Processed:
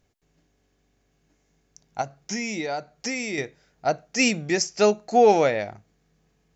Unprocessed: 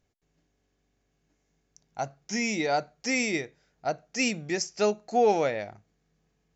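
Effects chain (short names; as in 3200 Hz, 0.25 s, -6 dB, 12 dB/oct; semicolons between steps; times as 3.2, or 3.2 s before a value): 2.01–3.38 compressor 5:1, threshold -33 dBFS, peak gain reduction 10.5 dB; gain +6 dB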